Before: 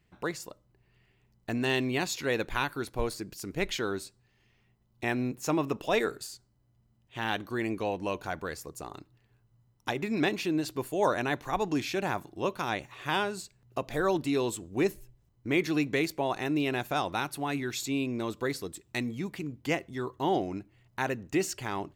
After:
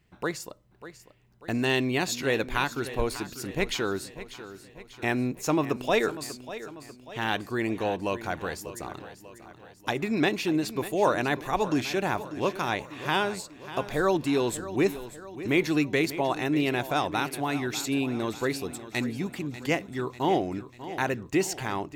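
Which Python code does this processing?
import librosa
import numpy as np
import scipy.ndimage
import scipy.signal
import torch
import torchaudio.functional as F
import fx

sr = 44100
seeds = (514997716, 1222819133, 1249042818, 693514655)

y = fx.echo_feedback(x, sr, ms=593, feedback_pct=52, wet_db=-14.0)
y = y * librosa.db_to_amplitude(3.0)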